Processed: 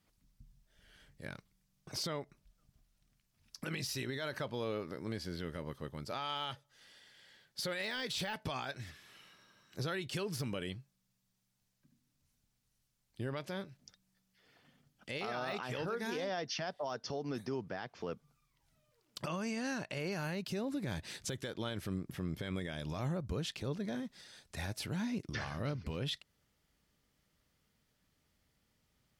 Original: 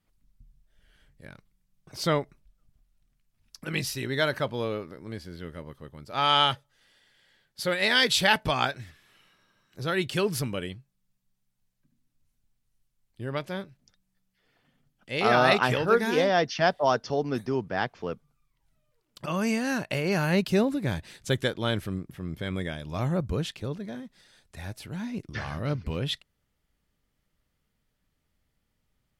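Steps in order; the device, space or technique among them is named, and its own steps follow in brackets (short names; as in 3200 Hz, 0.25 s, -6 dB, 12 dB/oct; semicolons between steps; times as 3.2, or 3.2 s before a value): broadcast voice chain (HPF 74 Hz 6 dB/oct; de-esser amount 65%; compressor 3:1, threshold -36 dBFS, peak gain reduction 14.5 dB; bell 5400 Hz +4 dB 0.94 oct; limiter -30.5 dBFS, peak gain reduction 10 dB); 19.28–20 LPF 9000 Hz 12 dB/oct; gain +1.5 dB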